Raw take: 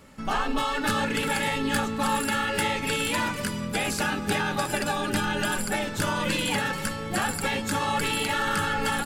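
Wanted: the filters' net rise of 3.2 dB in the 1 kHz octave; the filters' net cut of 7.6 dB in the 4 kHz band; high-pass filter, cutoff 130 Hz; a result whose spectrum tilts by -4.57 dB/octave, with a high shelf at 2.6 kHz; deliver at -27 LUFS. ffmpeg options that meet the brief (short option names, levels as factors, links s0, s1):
-af "highpass=130,equalizer=f=1000:t=o:g=5.5,highshelf=f=2600:g=-8.5,equalizer=f=4000:t=o:g=-3.5,volume=0.944"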